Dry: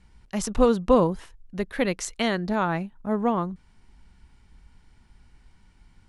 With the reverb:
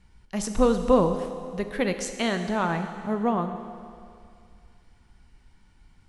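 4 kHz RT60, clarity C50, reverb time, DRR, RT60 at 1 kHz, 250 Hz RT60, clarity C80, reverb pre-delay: 2.3 s, 8.0 dB, 2.3 s, 7.0 dB, 2.3 s, 2.3 s, 9.0 dB, 10 ms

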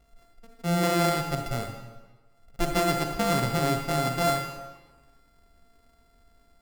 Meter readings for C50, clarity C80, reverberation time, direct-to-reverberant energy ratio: 5.0 dB, 7.0 dB, 1.3 s, 4.0 dB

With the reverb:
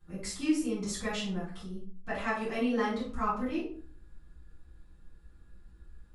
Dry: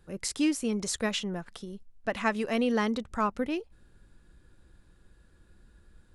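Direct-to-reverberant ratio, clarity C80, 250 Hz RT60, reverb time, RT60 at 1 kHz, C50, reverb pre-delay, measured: -11.0 dB, 10.5 dB, 0.70 s, 0.45 s, 0.45 s, 3.5 dB, 4 ms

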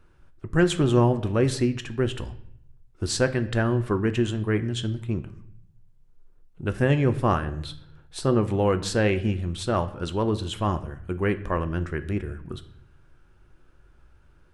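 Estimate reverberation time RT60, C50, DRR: 0.70 s, 15.0 dB, 9.5 dB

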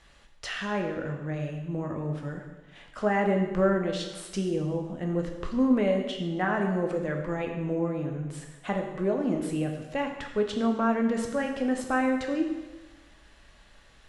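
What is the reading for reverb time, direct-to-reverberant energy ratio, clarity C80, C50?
1.2 s, 2.5 dB, 7.0 dB, 5.5 dB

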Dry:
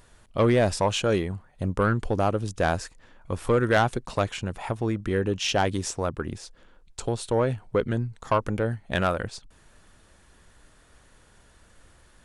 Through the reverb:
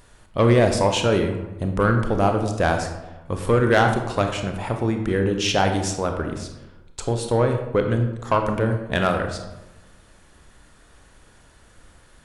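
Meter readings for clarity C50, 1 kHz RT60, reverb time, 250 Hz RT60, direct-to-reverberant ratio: 6.5 dB, 1.0 s, 1.0 s, 1.1 s, 4.5 dB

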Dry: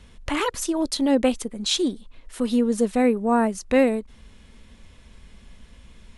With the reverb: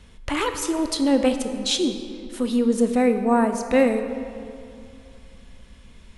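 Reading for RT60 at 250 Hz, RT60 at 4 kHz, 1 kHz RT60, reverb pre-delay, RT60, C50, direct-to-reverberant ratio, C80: 2.5 s, 1.5 s, 2.5 s, 21 ms, 2.5 s, 8.0 dB, 7.0 dB, 9.0 dB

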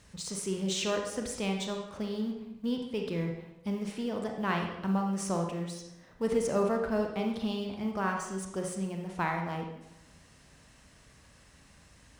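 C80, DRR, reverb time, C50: 7.0 dB, 2.0 dB, 0.90 s, 4.5 dB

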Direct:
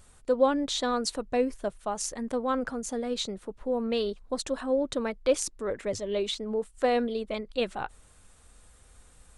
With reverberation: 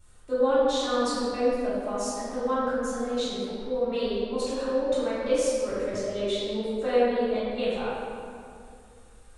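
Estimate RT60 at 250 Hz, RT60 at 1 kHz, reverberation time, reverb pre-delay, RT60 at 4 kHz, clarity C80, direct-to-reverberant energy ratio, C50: 2.7 s, 2.3 s, 2.4 s, 3 ms, 1.5 s, -1.5 dB, -11.5 dB, -4.0 dB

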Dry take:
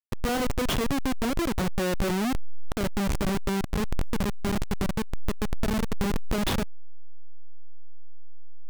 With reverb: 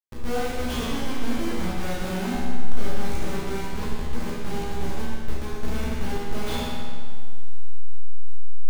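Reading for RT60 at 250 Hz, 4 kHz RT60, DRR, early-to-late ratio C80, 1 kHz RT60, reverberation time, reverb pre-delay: 1.8 s, 1.6 s, -9.0 dB, -0.5 dB, 1.8 s, 1.8 s, 12 ms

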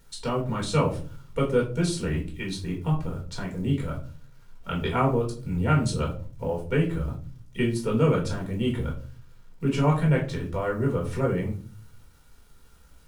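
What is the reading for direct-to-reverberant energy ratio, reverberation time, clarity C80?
-2.5 dB, 0.40 s, 15.0 dB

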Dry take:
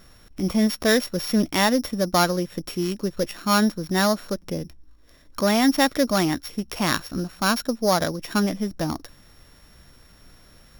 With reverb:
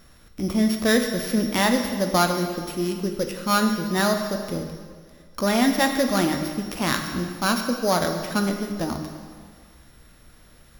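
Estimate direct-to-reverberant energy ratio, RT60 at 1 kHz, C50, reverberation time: 4.0 dB, 1.8 s, 6.0 dB, 1.8 s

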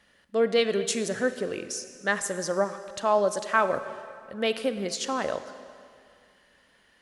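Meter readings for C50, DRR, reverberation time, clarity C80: 11.0 dB, 10.5 dB, 2.3 s, 12.0 dB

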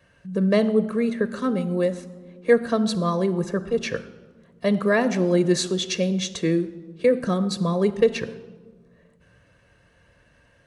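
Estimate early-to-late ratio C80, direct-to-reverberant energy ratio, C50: 16.5 dB, 12.0 dB, 15.0 dB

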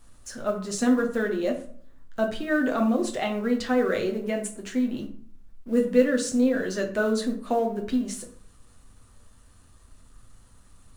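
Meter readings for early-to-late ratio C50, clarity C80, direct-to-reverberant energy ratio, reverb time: 10.0 dB, 13.5 dB, 1.5 dB, 0.55 s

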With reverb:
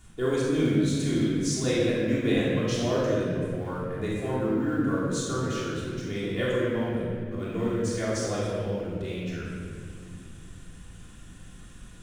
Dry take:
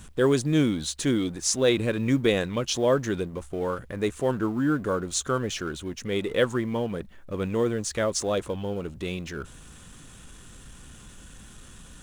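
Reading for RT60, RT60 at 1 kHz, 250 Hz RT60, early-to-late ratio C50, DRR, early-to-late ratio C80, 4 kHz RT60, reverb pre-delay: 2.1 s, 1.8 s, 3.8 s, -2.5 dB, -9.0 dB, 0.0 dB, 1.4 s, 3 ms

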